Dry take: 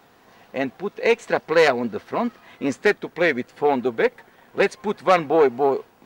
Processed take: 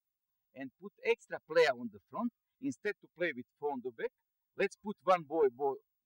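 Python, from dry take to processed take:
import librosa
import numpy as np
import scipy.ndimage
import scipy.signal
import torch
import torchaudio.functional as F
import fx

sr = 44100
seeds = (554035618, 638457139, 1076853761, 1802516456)

y = fx.bin_expand(x, sr, power=2.0)
y = fx.tremolo_random(y, sr, seeds[0], hz=3.5, depth_pct=55)
y = y * 10.0 ** (-8.5 / 20.0)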